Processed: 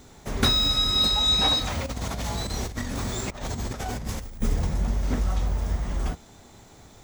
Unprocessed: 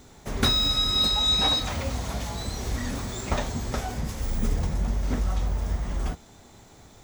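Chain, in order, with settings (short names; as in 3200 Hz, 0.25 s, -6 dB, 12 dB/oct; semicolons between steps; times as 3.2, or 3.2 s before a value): 1.86–4.42 negative-ratio compressor -31 dBFS, ratio -0.5; gain +1 dB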